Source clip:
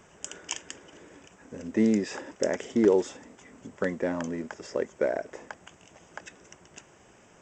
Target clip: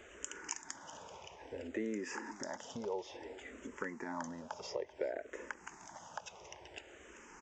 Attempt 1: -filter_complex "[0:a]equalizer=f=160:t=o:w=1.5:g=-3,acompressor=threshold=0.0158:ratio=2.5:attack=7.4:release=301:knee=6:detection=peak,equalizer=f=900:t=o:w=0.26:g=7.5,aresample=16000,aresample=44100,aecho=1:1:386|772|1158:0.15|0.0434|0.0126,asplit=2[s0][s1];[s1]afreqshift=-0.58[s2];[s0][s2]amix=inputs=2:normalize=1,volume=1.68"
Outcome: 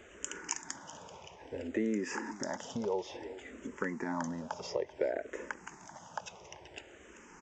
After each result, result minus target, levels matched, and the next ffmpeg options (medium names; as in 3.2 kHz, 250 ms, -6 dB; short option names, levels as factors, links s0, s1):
compression: peak gain reduction -4 dB; 125 Hz band +3.0 dB
-filter_complex "[0:a]equalizer=f=160:t=o:w=1.5:g=-3,acompressor=threshold=0.00596:ratio=2.5:attack=7.4:release=301:knee=6:detection=peak,equalizer=f=900:t=o:w=0.26:g=7.5,aresample=16000,aresample=44100,aecho=1:1:386|772|1158:0.15|0.0434|0.0126,asplit=2[s0][s1];[s1]afreqshift=-0.58[s2];[s0][s2]amix=inputs=2:normalize=1,volume=1.68"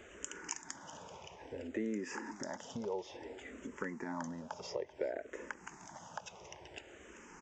125 Hz band +3.5 dB
-filter_complex "[0:a]equalizer=f=160:t=o:w=1.5:g=-9.5,acompressor=threshold=0.00596:ratio=2.5:attack=7.4:release=301:knee=6:detection=peak,equalizer=f=900:t=o:w=0.26:g=7.5,aresample=16000,aresample=44100,aecho=1:1:386|772|1158:0.15|0.0434|0.0126,asplit=2[s0][s1];[s1]afreqshift=-0.58[s2];[s0][s2]amix=inputs=2:normalize=1,volume=1.68"